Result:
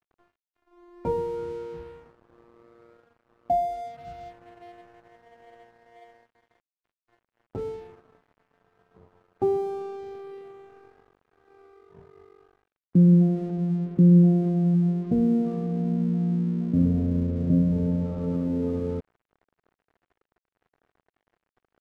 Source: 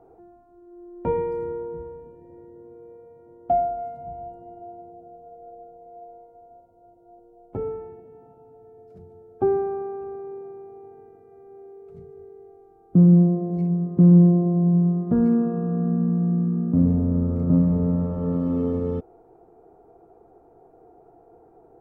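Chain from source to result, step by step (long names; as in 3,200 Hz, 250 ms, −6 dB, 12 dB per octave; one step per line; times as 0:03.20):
gate on every frequency bin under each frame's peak −30 dB strong
dead-zone distortion −46.5 dBFS
level −2.5 dB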